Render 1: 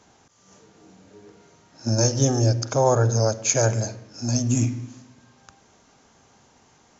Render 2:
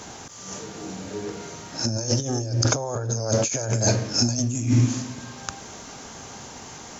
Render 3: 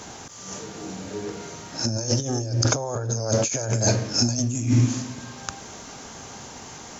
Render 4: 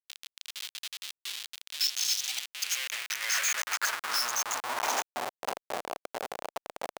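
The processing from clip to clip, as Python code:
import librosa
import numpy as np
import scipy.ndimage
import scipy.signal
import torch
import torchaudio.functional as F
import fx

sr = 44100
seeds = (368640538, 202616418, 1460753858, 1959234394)

y1 = fx.high_shelf(x, sr, hz=5300.0, db=6.5)
y1 = fx.over_compress(y1, sr, threshold_db=-31.0, ratio=-1.0)
y1 = y1 * 10.0 ** (7.0 / 20.0)
y2 = y1
y3 = fx.spec_dropout(y2, sr, seeds[0], share_pct=46)
y3 = fx.schmitt(y3, sr, flips_db=-33.5)
y3 = fx.filter_sweep_highpass(y3, sr, from_hz=3400.0, to_hz=640.0, start_s=2.19, end_s=5.43, q=2.0)
y3 = y3 * 10.0 ** (1.5 / 20.0)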